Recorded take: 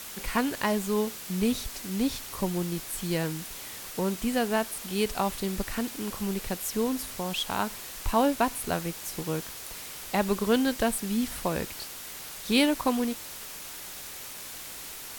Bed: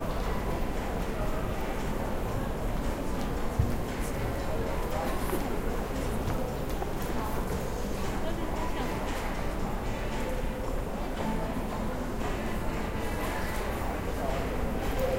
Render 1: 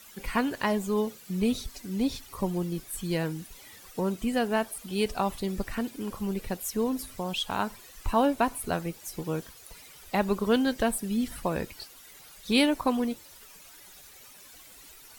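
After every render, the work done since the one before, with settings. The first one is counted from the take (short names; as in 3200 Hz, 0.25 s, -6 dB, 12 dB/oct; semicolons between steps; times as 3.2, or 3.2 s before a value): denoiser 13 dB, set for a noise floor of -41 dBFS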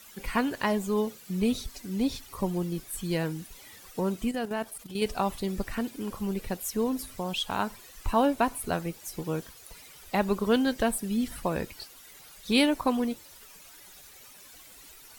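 4.31–5.02 level quantiser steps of 10 dB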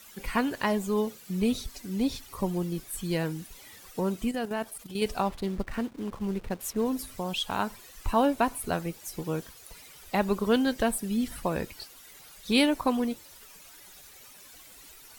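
5.22–6.86 backlash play -37.5 dBFS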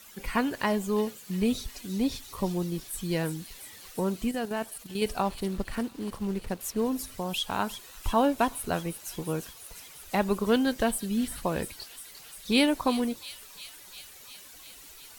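thin delay 0.35 s, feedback 76%, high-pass 4000 Hz, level -7.5 dB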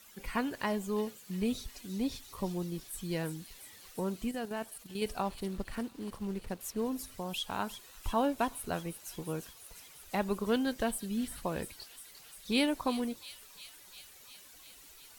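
gain -6 dB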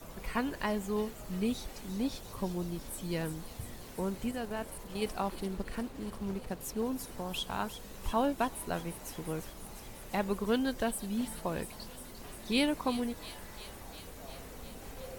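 add bed -16.5 dB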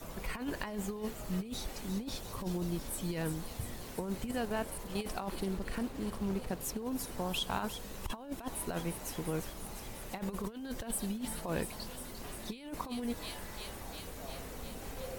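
negative-ratio compressor -35 dBFS, ratio -0.5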